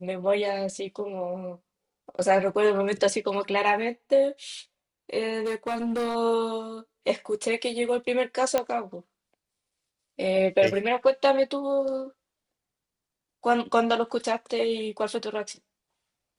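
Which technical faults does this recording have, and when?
5.45–6.16 clipped -24.5 dBFS
8.58 pop -10 dBFS

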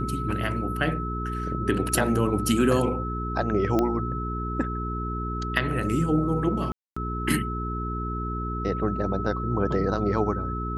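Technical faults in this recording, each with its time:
hum 60 Hz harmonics 7 -31 dBFS
tone 1300 Hz -32 dBFS
3.79 pop -12 dBFS
6.72–6.96 gap 0.245 s

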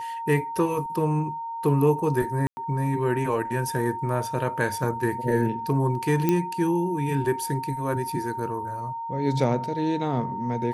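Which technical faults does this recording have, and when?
tone 920 Hz -30 dBFS
2.47–2.57 gap 0.1 s
6.29 pop -9 dBFS

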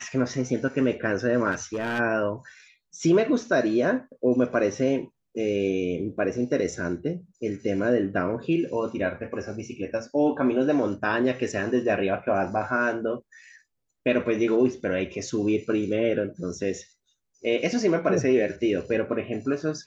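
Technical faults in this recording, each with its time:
1.51–2 clipped -23.5 dBFS

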